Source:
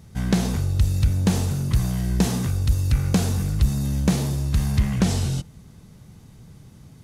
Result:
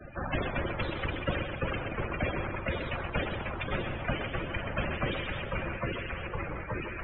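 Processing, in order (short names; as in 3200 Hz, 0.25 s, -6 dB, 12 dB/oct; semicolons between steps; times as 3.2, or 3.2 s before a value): reverb removal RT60 1.9 s; Chebyshev band-stop 280–570 Hz, order 5; bell 720 Hz -3.5 dB 3 oct; noise vocoder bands 6; mistuned SSB -300 Hz 260–3500 Hz; loudest bins only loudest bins 32; on a send: thinning echo 0.127 s, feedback 42%, level -11 dB; on the sum: echoes that change speed 0.187 s, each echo -2 st, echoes 3; small resonant body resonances 340/540/2400 Hz, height 12 dB; spectral compressor 2:1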